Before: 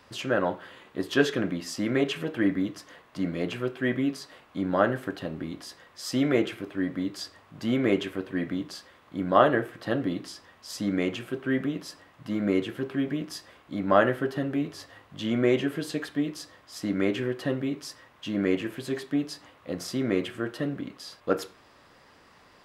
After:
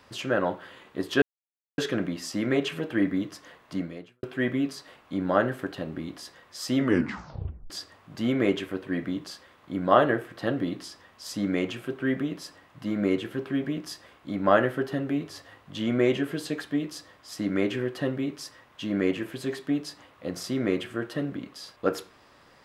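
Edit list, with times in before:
1.22 s: insert silence 0.56 s
3.19–3.67 s: fade out quadratic
6.20 s: tape stop 0.94 s

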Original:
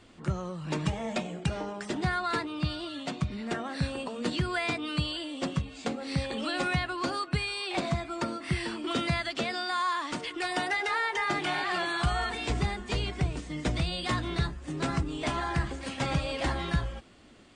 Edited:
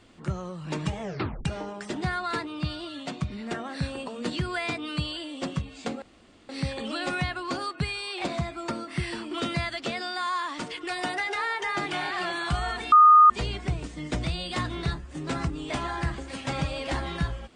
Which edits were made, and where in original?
1.02 s: tape stop 0.43 s
6.02 s: insert room tone 0.47 s
12.45–12.83 s: bleep 1.23 kHz -10.5 dBFS

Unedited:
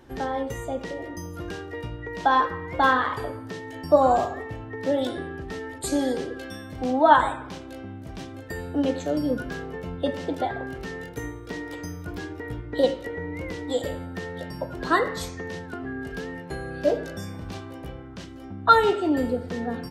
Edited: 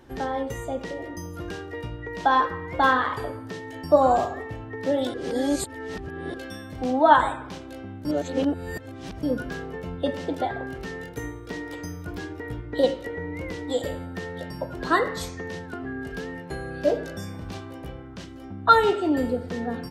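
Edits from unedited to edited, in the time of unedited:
5.14–6.34 s: reverse
8.05–9.23 s: reverse

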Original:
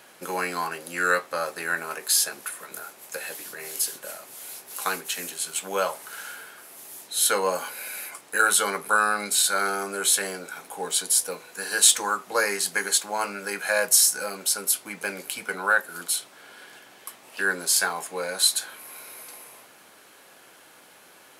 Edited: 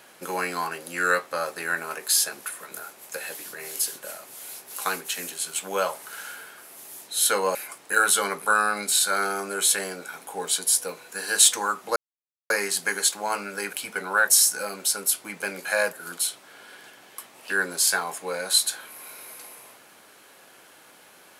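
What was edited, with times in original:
7.55–7.98 s: delete
12.39 s: insert silence 0.54 s
13.62–13.90 s: swap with 15.26–15.82 s

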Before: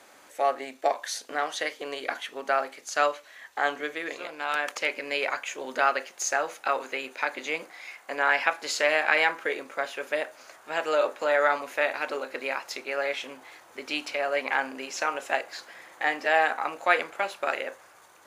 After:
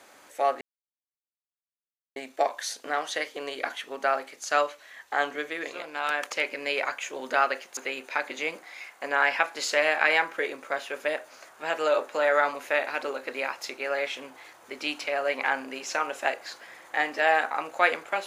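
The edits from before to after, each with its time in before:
0.61 s: insert silence 1.55 s
6.22–6.84 s: delete

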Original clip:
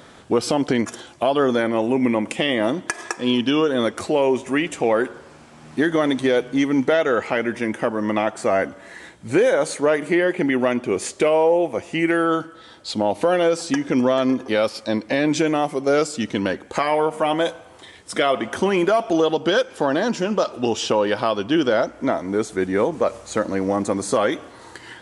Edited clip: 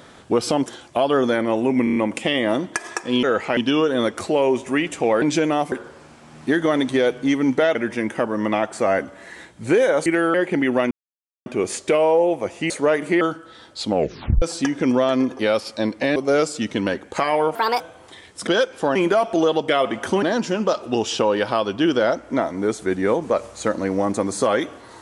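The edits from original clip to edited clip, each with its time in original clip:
0.66–0.92 s: delete
2.10 s: stutter 0.03 s, 5 plays
7.05–7.39 s: move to 3.37 s
9.70–10.21 s: swap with 12.02–12.30 s
10.78 s: insert silence 0.55 s
12.99 s: tape stop 0.52 s
15.25–15.75 s: move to 5.02 s
17.14–17.51 s: speed 146%
18.18–18.72 s: swap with 19.45–19.93 s

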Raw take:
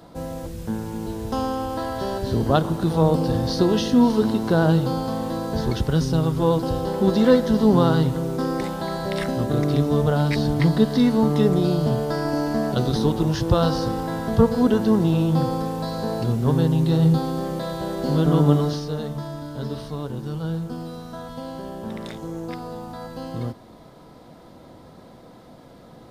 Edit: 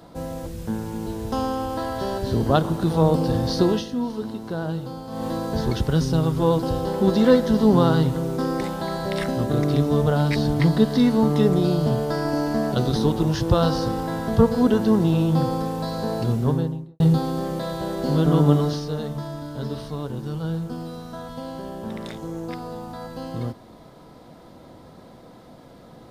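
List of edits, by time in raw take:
3.69–5.26 s: dip -10 dB, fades 0.17 s
16.33–17.00 s: studio fade out

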